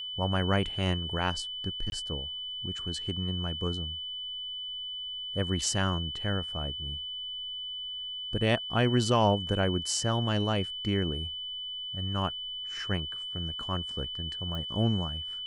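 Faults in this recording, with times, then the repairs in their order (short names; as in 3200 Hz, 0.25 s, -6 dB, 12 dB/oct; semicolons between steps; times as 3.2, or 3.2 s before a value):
tone 3000 Hz -35 dBFS
1.9–1.92 gap 21 ms
14.55 pop -25 dBFS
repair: de-click; notch 3000 Hz, Q 30; interpolate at 1.9, 21 ms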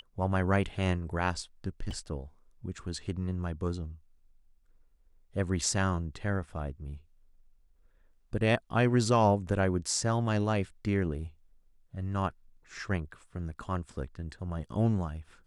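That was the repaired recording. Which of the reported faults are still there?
14.55 pop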